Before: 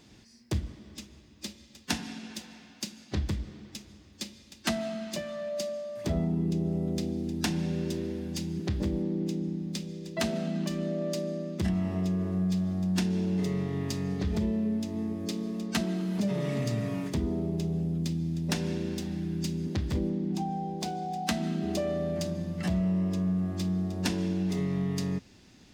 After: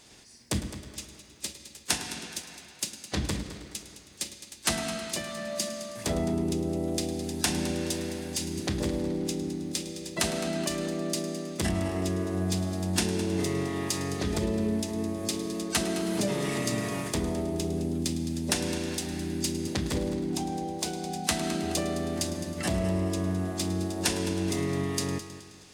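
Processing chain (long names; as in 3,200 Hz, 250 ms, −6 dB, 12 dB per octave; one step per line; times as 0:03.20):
ceiling on every frequency bin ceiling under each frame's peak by 13 dB
parametric band 9,500 Hz +11 dB 0.84 octaves
echo machine with several playback heads 106 ms, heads first and second, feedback 46%, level −15 dB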